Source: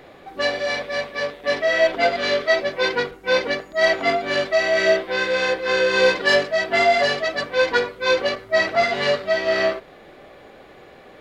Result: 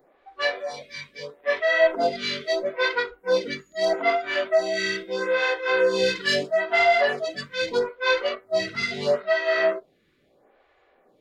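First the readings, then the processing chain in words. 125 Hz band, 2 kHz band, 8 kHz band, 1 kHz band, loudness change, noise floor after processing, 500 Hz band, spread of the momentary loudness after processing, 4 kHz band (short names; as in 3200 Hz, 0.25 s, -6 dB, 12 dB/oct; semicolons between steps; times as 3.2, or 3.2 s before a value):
-4.0 dB, -4.5 dB, -4.0 dB, -3.5 dB, -3.5 dB, -63 dBFS, -3.5 dB, 10 LU, -4.5 dB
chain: spectral noise reduction 14 dB; photocell phaser 0.77 Hz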